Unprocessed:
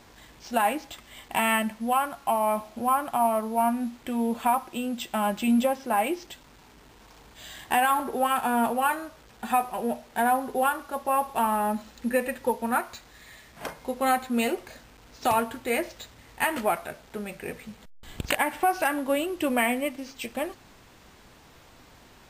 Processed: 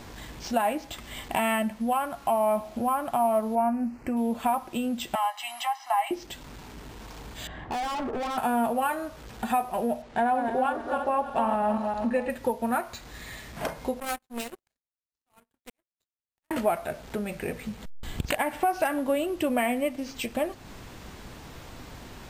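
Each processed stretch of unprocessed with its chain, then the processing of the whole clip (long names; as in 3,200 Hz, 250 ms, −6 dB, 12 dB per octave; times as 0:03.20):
0:03.55–0:04.17: Butterworth band-reject 3,500 Hz, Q 2 + high-shelf EQ 4,000 Hz −9.5 dB
0:05.15–0:06.11: elliptic high-pass filter 720 Hz + high-shelf EQ 6,900 Hz −6 dB + comb filter 1 ms, depth 83%
0:07.47–0:08.38: low-pass filter 1,400 Hz + gain into a clipping stage and back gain 34 dB
0:10.02–0:12.30: feedback delay that plays each chunk backwards 160 ms, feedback 56%, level −6.5 dB + high-frequency loss of the air 89 metres
0:14.00–0:16.51: high-shelf EQ 4,000 Hz +6.5 dB + volume swells 540 ms + power curve on the samples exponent 3
whole clip: low-shelf EQ 330 Hz +6 dB; downward compressor 2 to 1, threshold −40 dBFS; dynamic equaliser 640 Hz, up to +6 dB, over −50 dBFS, Q 3.6; level +6.5 dB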